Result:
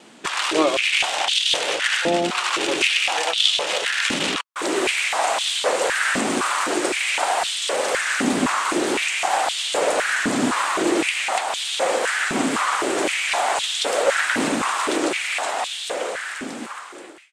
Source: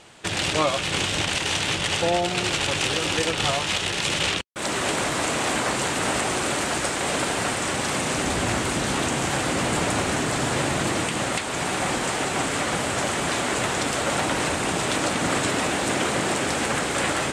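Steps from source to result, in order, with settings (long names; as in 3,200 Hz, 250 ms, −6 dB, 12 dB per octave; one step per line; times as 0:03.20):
fade-out on the ending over 2.74 s
tape wow and flutter 29 cents
high-pass on a step sequencer 3.9 Hz 240–3,400 Hz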